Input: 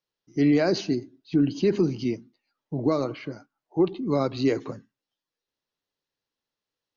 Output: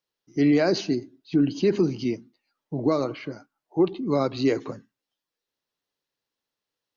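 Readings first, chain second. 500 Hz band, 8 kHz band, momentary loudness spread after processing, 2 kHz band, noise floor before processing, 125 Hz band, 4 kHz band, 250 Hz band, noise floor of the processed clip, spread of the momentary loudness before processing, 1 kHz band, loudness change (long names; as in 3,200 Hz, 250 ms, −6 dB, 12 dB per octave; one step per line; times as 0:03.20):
+1.0 dB, can't be measured, 15 LU, +1.5 dB, below −85 dBFS, −0.5 dB, +1.5 dB, +0.5 dB, below −85 dBFS, 15 LU, +1.5 dB, +1.0 dB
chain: low-shelf EQ 130 Hz −5 dB
level +1.5 dB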